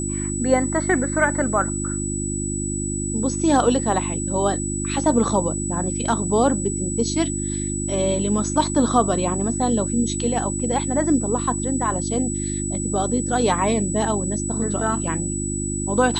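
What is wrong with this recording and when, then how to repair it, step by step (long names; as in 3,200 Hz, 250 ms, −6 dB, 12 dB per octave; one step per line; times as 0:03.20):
mains hum 50 Hz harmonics 7 −27 dBFS
whistle 7,900 Hz −28 dBFS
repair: notch filter 7,900 Hz, Q 30
hum removal 50 Hz, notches 7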